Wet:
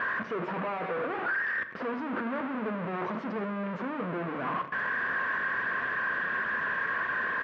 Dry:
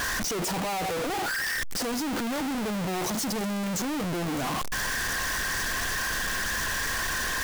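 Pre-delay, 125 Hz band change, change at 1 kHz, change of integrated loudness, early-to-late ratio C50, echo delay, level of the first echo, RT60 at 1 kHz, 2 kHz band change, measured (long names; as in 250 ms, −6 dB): 10 ms, −6.5 dB, −0.5 dB, −3.0 dB, 12.0 dB, 81 ms, −17.5 dB, 0.70 s, +0.5 dB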